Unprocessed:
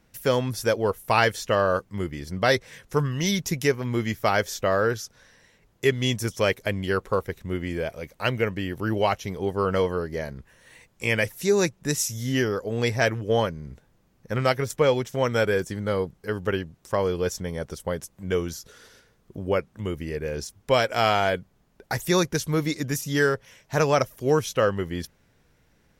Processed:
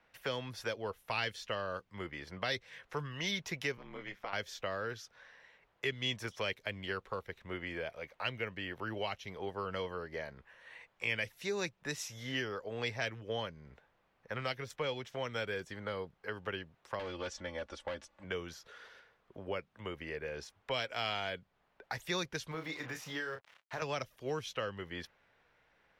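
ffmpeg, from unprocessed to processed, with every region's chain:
-filter_complex "[0:a]asettb=1/sr,asplit=3[s0][s1][s2];[s0]atrim=end=3.774[s3];[s1]atrim=start=3.77:end=4.33,asetpts=PTS-STARTPTS,afade=t=in:d=0.004:c=qsin,afade=t=out:st=0.556:d=0.004:c=qsin,highshelf=f=10000:g=-10,acompressor=threshold=0.0316:ratio=2.5:attack=3.2:release=140:knee=1:detection=peak,aeval=exprs='val(0)*sin(2*PI*100*n/s)':c=same[s4];[s2]atrim=start=4.326[s5];[s3][s4]acrossfade=d=0.004:c1=hsin:c2=qsin[s6];[s6][s5]acrossfade=d=0.004:c1=qsin:c2=hsin,asettb=1/sr,asplit=3[s7][s8][s9];[s7]atrim=end=16.994[s10];[s8]atrim=start=16.99:end=18.24,asetpts=PTS-STARTPTS,afade=t=in:d=0.004:c=qsin,afade=t=out:st=1.246:d=0.004:c=qsin,lowpass=f=8600:w=0.5412,lowpass=f=8600:w=1.3066,aecho=1:1:3.5:0.88,atrim=end_sample=55125,volume=13.3,asoftclip=hard,volume=0.075[s11];[s9]atrim=start=18.236[s12];[s10][s11]acrossfade=d=0.004:c1=hsin:c2=qsin[s13];[s13][s12]acrossfade=d=0.004:c1=qsin:c2=hsin,asettb=1/sr,asplit=3[s14][s15][s16];[s14]atrim=end=22.514[s17];[s15]atrim=start=22.51:end=23.82,asetpts=PTS-STARTPTS,afade=t=in:d=0.004:c=qsin,afade=t=out:st=1.306:d=0.004:c=qsin,acrusher=bits=6:mix=0:aa=0.5,acompressor=threshold=0.0447:ratio=3:attack=3.2:release=140:knee=1:detection=peak,asplit=2[s18][s19];[s19]adelay=31,volume=0.447[s20];[s18][s20]amix=inputs=2:normalize=0,atrim=end_sample=57771[s21];[s16]atrim=start=23.816[s22];[s17][s21]acrossfade=d=0.004:c1=hsin:c2=qsin[s23];[s23][s22]acrossfade=d=0.004:c1=qsin:c2=hsin,acrossover=split=530 3600:gain=0.141 1 0.0794[s24][s25][s26];[s24][s25][s26]amix=inputs=3:normalize=0,acrossover=split=290|3000[s27][s28][s29];[s28]acompressor=threshold=0.01:ratio=5[s30];[s27][s30][s29]amix=inputs=3:normalize=0"

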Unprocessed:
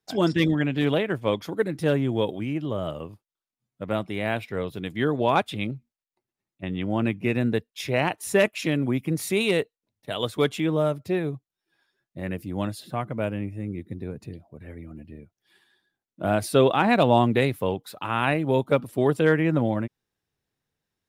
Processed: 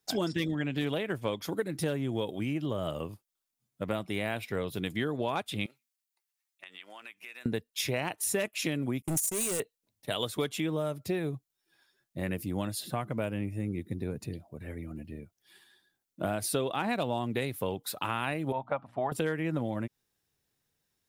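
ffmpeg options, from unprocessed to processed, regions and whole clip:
-filter_complex "[0:a]asettb=1/sr,asplit=3[s0][s1][s2];[s0]atrim=end=5.664[s3];[s1]atrim=start=5.66:end=7.46,asetpts=PTS-STARTPTS,afade=t=in:d=0.004:c=qsin,afade=t=out:st=1.796:d=0.004:c=qsin,highpass=1300,acompressor=threshold=0.00501:ratio=4:attack=3.2:release=140:knee=1:detection=peak[s4];[s2]atrim=start=7.456[s5];[s3][s4]acrossfade=d=0.004:c1=hsin:c2=qsin[s6];[s6][s5]acrossfade=d=0.004:c1=qsin:c2=hsin,asettb=1/sr,asplit=3[s7][s8][s9];[s7]atrim=end=9.024[s10];[s8]atrim=start=9.02:end=9.6,asetpts=PTS-STARTPTS,afade=t=in:d=0.004:c=qsin,afade=t=out:st=0.576:d=0.004:c=qsin,agate=range=0.0224:threshold=0.0251:ratio=16:release=100:detection=peak,highshelf=f=5100:t=q:w=3:g=13,asoftclip=type=hard:threshold=0.0501[s11];[s9]atrim=start=9.596[s12];[s10][s11]acrossfade=d=0.004:c1=hsin:c2=qsin[s13];[s13][s12]acrossfade=d=0.004:c1=qsin:c2=hsin,asettb=1/sr,asplit=3[s14][s15][s16];[s14]atrim=end=18.524[s17];[s15]atrim=start=18.52:end=19.12,asetpts=PTS-STARTPTS,afade=t=in:d=0.004:c=qsin,afade=t=out:st=0.596:d=0.004:c=qsin,lowpass=1500,lowshelf=f=550:t=q:w=3:g=-9,bandreject=f=60:t=h:w=6,bandreject=f=120:t=h:w=6,bandreject=f=180:t=h:w=6,bandreject=f=240:t=h:w=6,bandreject=f=300:t=h:w=6[s18];[s16]atrim=start=19.116[s19];[s17][s18]acrossfade=d=0.004:c1=hsin:c2=qsin[s20];[s20][s19]acrossfade=d=0.004:c1=qsin:c2=hsin,highshelf=f=4800:g=10,acompressor=threshold=0.0398:ratio=6"

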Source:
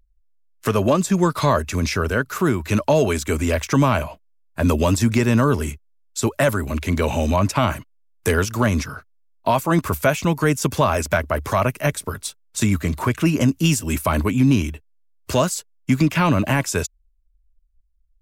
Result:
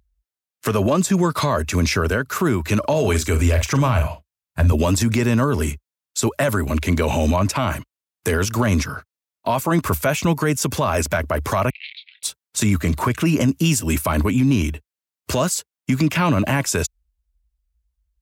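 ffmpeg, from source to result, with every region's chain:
-filter_complex "[0:a]asettb=1/sr,asplit=3[s0][s1][s2];[s0]atrim=end=2.794[s3];[s1]atrim=start=2.79:end=4.72,asetpts=PTS-STARTPTS,afade=t=in:d=0.004:c=qsin,afade=t=out:st=1.926:d=0.004:c=qsin,asubboost=boost=11:cutoff=110,asplit=2[s4][s5];[s5]adelay=46,volume=0.282[s6];[s4][s6]amix=inputs=2:normalize=0,atrim=end_sample=85113[s7];[s2]atrim=start=4.716[s8];[s3][s7]acrossfade=d=0.004:c1=hsin:c2=qsin[s9];[s9][s8]acrossfade=d=0.004:c1=qsin:c2=hsin,asettb=1/sr,asplit=3[s10][s11][s12];[s10]atrim=end=11.704[s13];[s11]atrim=start=11.7:end=12.23,asetpts=PTS-STARTPTS,afade=t=in:d=0.004:c=qsin,afade=t=out:st=0.526:d=0.004:c=qsin,asplit=2[s14][s15];[s15]adelay=27,volume=0.282[s16];[s14][s16]amix=inputs=2:normalize=0,atrim=end_sample=23373,volume=14.1,asoftclip=hard,volume=0.0708,asuperpass=centerf=3000:order=12:qfactor=1.4[s17];[s12]atrim=start=12.226[s18];[s13][s17]acrossfade=d=0.004:c1=hsin:c2=qsin[s19];[s19][s18]acrossfade=d=0.004:c1=qsin:c2=hsin,highpass=f=49:w=0.5412,highpass=f=49:w=1.3066,alimiter=limit=0.224:level=0:latency=1:release=48,volume=1.5"

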